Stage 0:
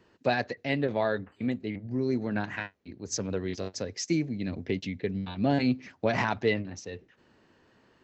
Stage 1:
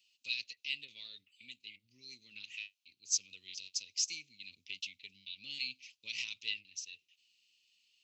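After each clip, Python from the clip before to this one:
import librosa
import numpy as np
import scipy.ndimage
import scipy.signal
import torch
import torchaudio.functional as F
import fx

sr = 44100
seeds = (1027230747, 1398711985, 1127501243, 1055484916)

y = scipy.signal.sosfilt(scipy.signal.ellip(4, 1.0, 40, 2600.0, 'highpass', fs=sr, output='sos'), x)
y = F.gain(torch.from_numpy(y), 2.5).numpy()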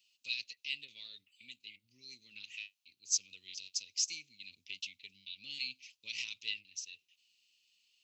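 y = fx.high_shelf(x, sr, hz=6000.0, db=4.0)
y = F.gain(torch.from_numpy(y), -1.5).numpy()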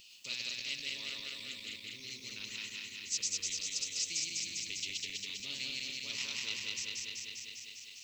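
y = fx.reverse_delay_fb(x, sr, ms=100, feedback_pct=77, wet_db=-1.0)
y = fx.spectral_comp(y, sr, ratio=2.0)
y = F.gain(torch.from_numpy(y), -3.5).numpy()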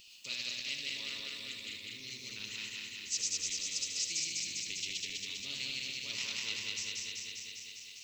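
y = x + 10.0 ** (-7.5 / 20.0) * np.pad(x, (int(77 * sr / 1000.0), 0))[:len(x)]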